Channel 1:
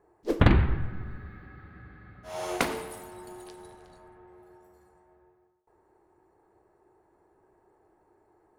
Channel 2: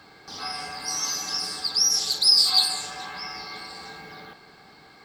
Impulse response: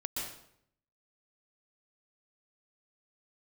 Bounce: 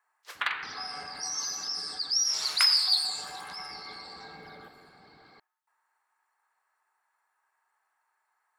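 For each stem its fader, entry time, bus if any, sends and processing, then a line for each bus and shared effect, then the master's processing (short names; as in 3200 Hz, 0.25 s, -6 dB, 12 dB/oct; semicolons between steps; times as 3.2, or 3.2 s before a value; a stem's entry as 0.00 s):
+1.5 dB, 0.00 s, no send, HPF 1200 Hz 24 dB/oct
-7.5 dB, 0.35 s, send -10 dB, formant sharpening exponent 1.5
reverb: on, RT60 0.70 s, pre-delay 0.114 s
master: dry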